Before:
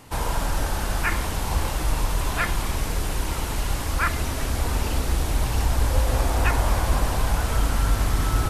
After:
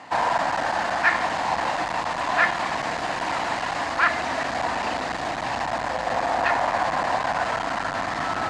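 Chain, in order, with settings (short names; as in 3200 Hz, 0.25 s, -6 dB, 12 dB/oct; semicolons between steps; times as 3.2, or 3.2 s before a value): in parallel at -2 dB: vocal rider; on the sum: hard clip -14.5 dBFS, distortion -12 dB; speaker cabinet 270–6100 Hz, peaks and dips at 410 Hz -9 dB, 710 Hz +10 dB, 1000 Hz +5 dB, 1800 Hz +8 dB, 3400 Hz -3 dB, 5700 Hz -6 dB; gain -2 dB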